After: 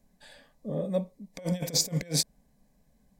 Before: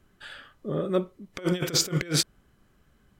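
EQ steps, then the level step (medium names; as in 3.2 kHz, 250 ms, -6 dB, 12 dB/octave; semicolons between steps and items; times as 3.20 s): peaking EQ 3 kHz -13.5 dB 0.42 oct; static phaser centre 360 Hz, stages 6; 0.0 dB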